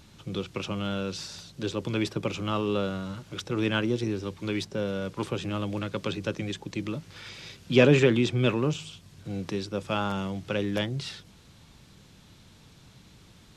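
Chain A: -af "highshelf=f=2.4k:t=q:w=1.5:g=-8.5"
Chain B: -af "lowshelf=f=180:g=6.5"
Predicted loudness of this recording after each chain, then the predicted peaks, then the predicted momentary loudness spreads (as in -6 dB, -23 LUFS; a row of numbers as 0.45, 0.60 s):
-29.0, -27.0 LUFS; -6.0, -5.0 dBFS; 14, 14 LU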